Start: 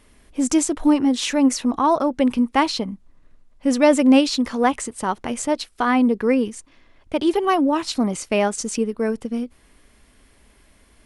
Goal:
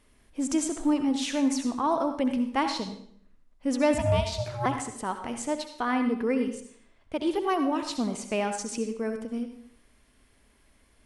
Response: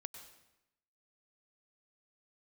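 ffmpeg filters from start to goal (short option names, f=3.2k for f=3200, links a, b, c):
-filter_complex "[0:a]asettb=1/sr,asplit=3[a][b][c];[a]atrim=end=3.944[d];[b]atrim=start=3.94:end=4.66,asetpts=PTS-STARTPTS,afade=t=in:d=0.004:c=qsin,afade=t=out:st=0.716:d=0.004:c=qsin,aeval=exprs='val(0)*sin(2*PI*360*n/s)':c=same[e];[c]atrim=start=4.656[f];[d][e]acrossfade=d=0.004:c1=hsin:c2=qsin[g];[g][f]acrossfade=d=0.004:c1=qsin:c2=hsin[h];[1:a]atrim=start_sample=2205,asetrate=66150,aresample=44100[i];[h][i]afir=irnorm=-1:irlink=0"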